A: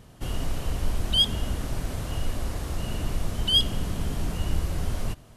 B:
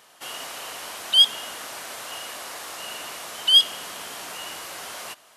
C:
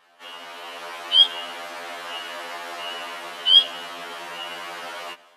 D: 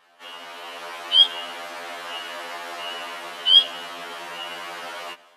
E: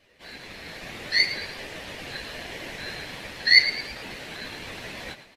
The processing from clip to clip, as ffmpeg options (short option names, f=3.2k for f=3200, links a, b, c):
-af "highpass=880,volume=6.5dB"
-filter_complex "[0:a]acrossover=split=180 3800:gain=0.0708 1 0.158[a][b][c];[a][b][c]amix=inputs=3:normalize=0,dynaudnorm=f=440:g=3:m=7dB,afftfilt=real='re*2*eq(mod(b,4),0)':imag='im*2*eq(mod(b,4),0)':win_size=2048:overlap=0.75"
-af anull
-filter_complex "[0:a]afftfilt=real='hypot(re,im)*cos(2*PI*random(0))':imag='hypot(re,im)*sin(2*PI*random(1))':win_size=512:overlap=0.75,aeval=exprs='val(0)*sin(2*PI*1200*n/s)':c=same,asplit=5[a][b][c][d][e];[b]adelay=110,afreqshift=81,volume=-12.5dB[f];[c]adelay=220,afreqshift=162,volume=-20.2dB[g];[d]adelay=330,afreqshift=243,volume=-28dB[h];[e]adelay=440,afreqshift=324,volume=-35.7dB[i];[a][f][g][h][i]amix=inputs=5:normalize=0,volume=5.5dB"